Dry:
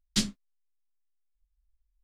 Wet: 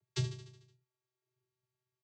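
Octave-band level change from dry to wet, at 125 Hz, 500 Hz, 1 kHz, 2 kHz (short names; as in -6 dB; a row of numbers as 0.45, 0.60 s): +5.0, +2.0, -6.0, -9.5 dB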